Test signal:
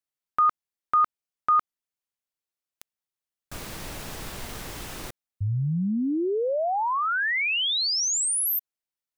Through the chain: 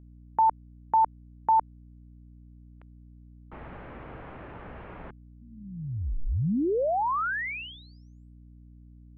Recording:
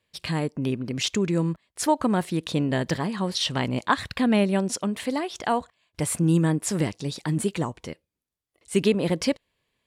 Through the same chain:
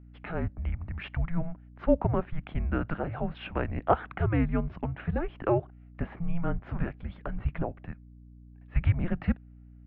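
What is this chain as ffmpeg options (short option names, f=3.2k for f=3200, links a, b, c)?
-filter_complex "[0:a]acrossover=split=270 2000:gain=0.2 1 0.141[a][b][c];[a][b][c]amix=inputs=3:normalize=0,highpass=f=160:t=q:w=0.5412,highpass=f=160:t=q:w=1.307,lowpass=f=3.2k:t=q:w=0.5176,lowpass=f=3.2k:t=q:w=0.7071,lowpass=f=3.2k:t=q:w=1.932,afreqshift=-340,aeval=exprs='val(0)+0.00355*(sin(2*PI*60*n/s)+sin(2*PI*2*60*n/s)/2+sin(2*PI*3*60*n/s)/3+sin(2*PI*4*60*n/s)/4+sin(2*PI*5*60*n/s)/5)':c=same"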